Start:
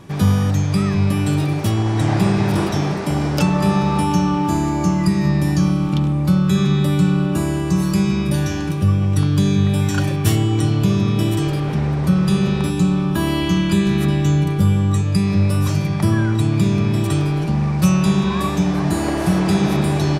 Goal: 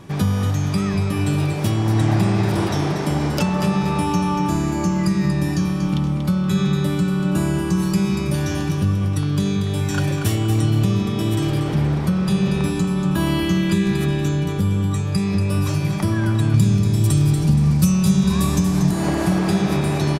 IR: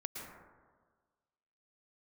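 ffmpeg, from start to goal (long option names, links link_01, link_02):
-filter_complex "[0:a]asettb=1/sr,asplit=3[link_01][link_02][link_03];[link_01]atrim=end=16.544[link_04];[link_02]atrim=start=16.54:end=18.91,asetpts=PTS-STARTPTS,afade=type=in:duration=0.004:curve=qsin,afade=type=out:start_time=2.366:duration=0.004:curve=qsin,bass=frequency=250:gain=11,treble=frequency=4000:gain=13[link_05];[link_03]atrim=start=18.906[link_06];[link_04][link_05]acrossfade=duration=0.004:curve1=hsin:curve2=qsin[link_07];[link_07][link_06]acrossfade=duration=0.004:curve1=qsin:curve2=hsin,acompressor=threshold=-16dB:ratio=3,aecho=1:1:236|472|708|944:0.398|0.143|0.0516|0.0186"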